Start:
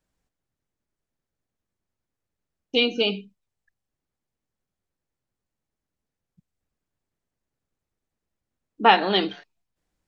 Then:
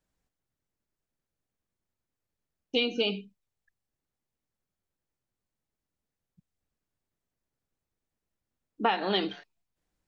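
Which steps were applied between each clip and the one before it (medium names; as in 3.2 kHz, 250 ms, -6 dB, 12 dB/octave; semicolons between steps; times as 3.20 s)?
compression 10:1, threshold -19 dBFS, peak gain reduction 10 dB; trim -3 dB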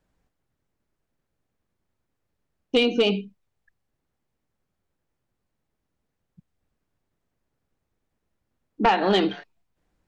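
treble shelf 3.4 kHz -11 dB; sine folder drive 6 dB, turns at -12 dBFS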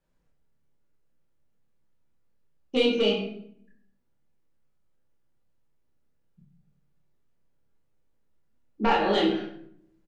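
doubling 28 ms -5 dB; simulated room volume 130 m³, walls mixed, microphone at 1.2 m; trim -8.5 dB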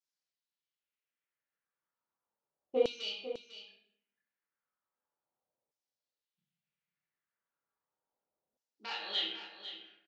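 LFO band-pass saw down 0.35 Hz 580–5900 Hz; on a send: delay 499 ms -11.5 dB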